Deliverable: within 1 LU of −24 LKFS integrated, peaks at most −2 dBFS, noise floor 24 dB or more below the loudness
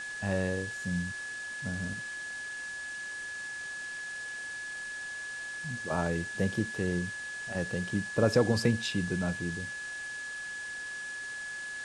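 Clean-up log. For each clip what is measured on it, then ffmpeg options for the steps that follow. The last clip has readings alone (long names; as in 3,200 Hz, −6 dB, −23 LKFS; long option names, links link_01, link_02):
interfering tone 1,700 Hz; level of the tone −37 dBFS; background noise floor −40 dBFS; target noise floor −58 dBFS; integrated loudness −33.5 LKFS; sample peak −12.0 dBFS; target loudness −24.0 LKFS
→ -af "bandreject=frequency=1700:width=30"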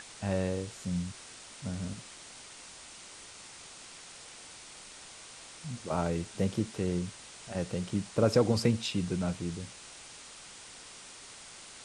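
interfering tone none found; background noise floor −50 dBFS; target noise floor −57 dBFS
→ -af "afftdn=noise_reduction=7:noise_floor=-50"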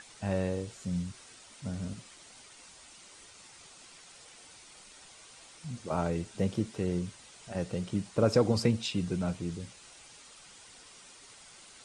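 background noise floor −54 dBFS; target noise floor −57 dBFS
→ -af "afftdn=noise_reduction=6:noise_floor=-54"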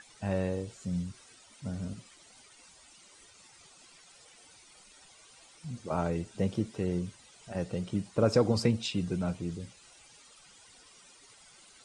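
background noise floor −58 dBFS; integrated loudness −32.5 LKFS; sample peak −11.5 dBFS; target loudness −24.0 LKFS
→ -af "volume=8.5dB"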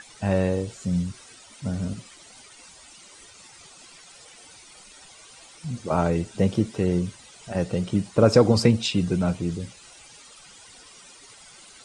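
integrated loudness −24.0 LKFS; sample peak −3.0 dBFS; background noise floor −49 dBFS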